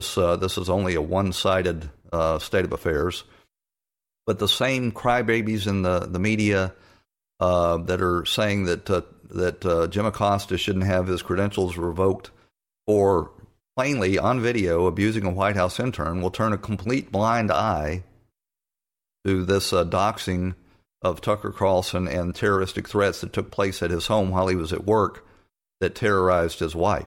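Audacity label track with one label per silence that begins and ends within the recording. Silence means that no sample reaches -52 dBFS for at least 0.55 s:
3.430000	4.270000	silence
18.200000	19.250000	silence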